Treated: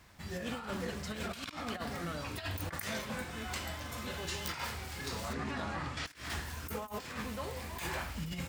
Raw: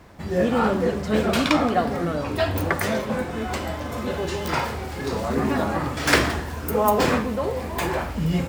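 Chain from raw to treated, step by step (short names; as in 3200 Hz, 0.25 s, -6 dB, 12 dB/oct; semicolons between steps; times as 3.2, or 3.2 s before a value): passive tone stack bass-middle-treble 5-5-5; negative-ratio compressor -39 dBFS, ratio -0.5; 5.33–6.06 air absorption 82 m; gain +1 dB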